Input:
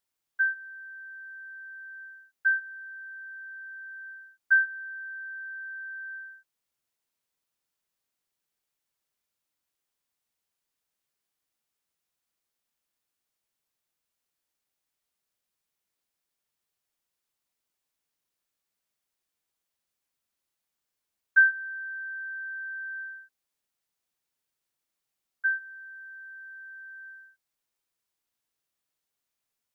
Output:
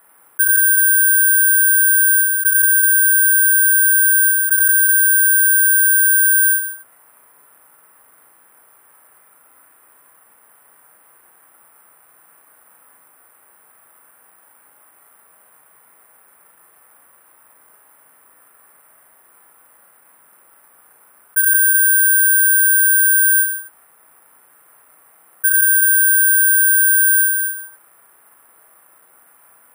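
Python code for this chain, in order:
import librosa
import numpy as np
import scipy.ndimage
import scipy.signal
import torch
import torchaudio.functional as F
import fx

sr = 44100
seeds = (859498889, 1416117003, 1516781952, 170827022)

y = scipy.signal.sosfilt(scipy.signal.butter(4, 1400.0, 'lowpass', fs=sr, output='sos'), x)
y = fx.tilt_eq(y, sr, slope=5.0)
y = fx.doubler(y, sr, ms=35.0, db=-6.0)
y = fx.echo_multitap(y, sr, ms=(43, 49, 98, 130, 172, 372), db=(-18.0, -7.0, -15.5, -19.0, -8.5, -16.5))
y = (np.kron(scipy.signal.resample_poly(y, 1, 4), np.eye(4)[0]) * 4)[:len(y)]
y = fx.env_flatten(y, sr, amount_pct=100)
y = y * librosa.db_to_amplitude(-1.5)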